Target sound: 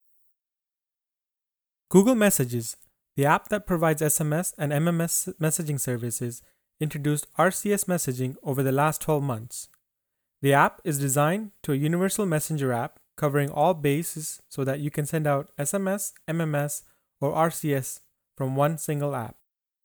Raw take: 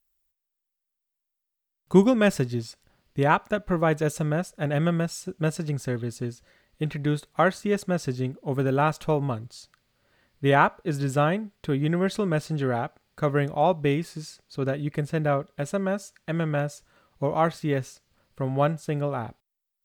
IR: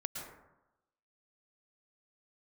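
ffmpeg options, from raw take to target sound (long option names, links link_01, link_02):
-af "aexciter=amount=10.2:drive=2.7:freq=7200,agate=range=-33dB:threshold=-44dB:ratio=3:detection=peak"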